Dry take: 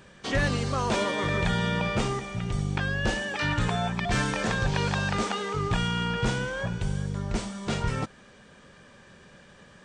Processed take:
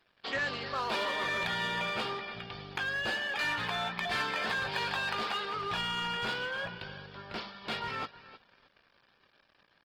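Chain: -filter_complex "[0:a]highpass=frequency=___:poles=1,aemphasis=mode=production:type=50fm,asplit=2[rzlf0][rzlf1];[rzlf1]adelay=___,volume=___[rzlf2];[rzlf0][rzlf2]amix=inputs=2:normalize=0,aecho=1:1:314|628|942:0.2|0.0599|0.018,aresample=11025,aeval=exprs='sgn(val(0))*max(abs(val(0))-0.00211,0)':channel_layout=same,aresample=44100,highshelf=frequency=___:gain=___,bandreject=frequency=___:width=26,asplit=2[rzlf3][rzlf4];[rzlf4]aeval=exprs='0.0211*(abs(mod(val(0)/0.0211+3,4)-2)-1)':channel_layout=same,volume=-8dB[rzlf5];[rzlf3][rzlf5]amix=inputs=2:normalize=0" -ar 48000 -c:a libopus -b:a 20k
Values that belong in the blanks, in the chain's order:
1300, 18, -11dB, 4100, -11.5, 2000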